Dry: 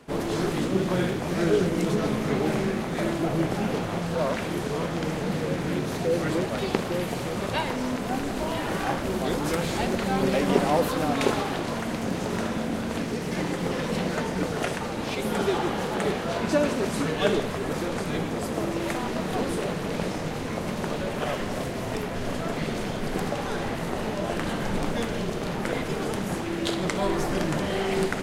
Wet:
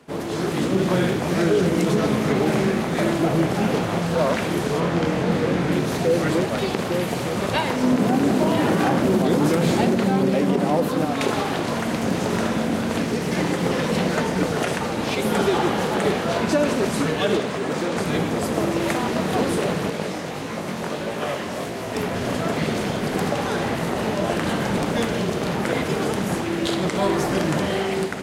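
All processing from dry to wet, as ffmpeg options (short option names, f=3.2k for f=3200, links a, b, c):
-filter_complex "[0:a]asettb=1/sr,asplit=3[a][b][c];[a]atrim=end=4.804[d];[b]atrim=start=4.8:end=5.72,asetpts=PTS-STARTPTS,afade=t=in:d=0.004:c=qsin,afade=t=out:st=0.916:d=0.004:c=qsin,highshelf=f=5.7k:g=-8.5,asplit=2[e][f];[f]adelay=23,volume=-4.5dB[g];[e][g]amix=inputs=2:normalize=0,atrim=end_sample=40572[h];[c]atrim=start=5.716[i];[d][h]acrossfade=d=0.004:c1=hsin:c2=qsin[j];[j][i]acrossfade=d=0.004:c1=qsin:c2=hsin,asettb=1/sr,asplit=3[k][l][m];[k]atrim=end=7.834[n];[l]atrim=start=7.83:end=11.05,asetpts=PTS-STARTPTS,afade=t=in:d=0.004:c=qsin,afade=t=out:st=3.216:d=0.004:c=qsin,highpass=150,lowshelf=f=420:g=11[o];[m]atrim=start=11.046[p];[n][o]acrossfade=d=0.004:c1=hsin:c2=qsin[q];[q][p]acrossfade=d=0.004:c1=qsin:c2=hsin,asettb=1/sr,asplit=3[r][s][t];[r]atrim=end=17.374[u];[s]atrim=start=17.37:end=17.97,asetpts=PTS-STARTPTS,afade=t=in:d=0.004:c=qsin,afade=t=out:st=0.596:d=0.004:c=qsin,highpass=140,equalizer=f=12k:w=2.4:g=-12,asoftclip=type=hard:threshold=-22dB[v];[t]atrim=start=17.966[w];[u][v]acrossfade=d=0.004:c1=hsin:c2=qsin[x];[x][w]acrossfade=d=0.004:c1=qsin:c2=hsin,asettb=1/sr,asplit=3[y][z][aa];[y]atrim=end=19.904[ab];[z]atrim=start=19.9:end=21.96,asetpts=PTS-STARTPTS,afade=t=in:d=0.004:c=qsin,afade=t=out:st=2.056:d=0.004:c=qsin,lowshelf=f=170:g=-7,flanger=delay=17.5:depth=5.5:speed=1.6[ac];[aa]atrim=start=21.956[ad];[ab][ac]acrossfade=d=0.004:c1=hsin:c2=qsin[ae];[ae][ad]acrossfade=d=0.004:c1=qsin:c2=hsin,highpass=75,dynaudnorm=f=100:g=11:m=6dB,alimiter=level_in=9dB:limit=-1dB:release=50:level=0:latency=1,volume=-9dB"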